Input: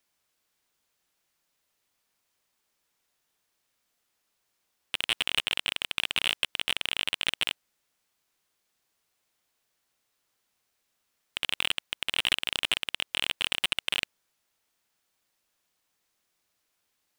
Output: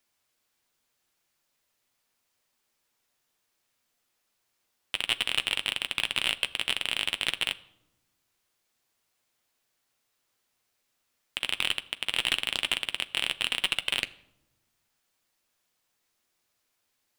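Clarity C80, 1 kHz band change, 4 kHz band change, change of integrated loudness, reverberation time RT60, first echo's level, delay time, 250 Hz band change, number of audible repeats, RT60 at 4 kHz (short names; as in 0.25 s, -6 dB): 21.5 dB, +0.5 dB, +0.5 dB, +0.5 dB, 0.90 s, none, none, +1.0 dB, none, 0.55 s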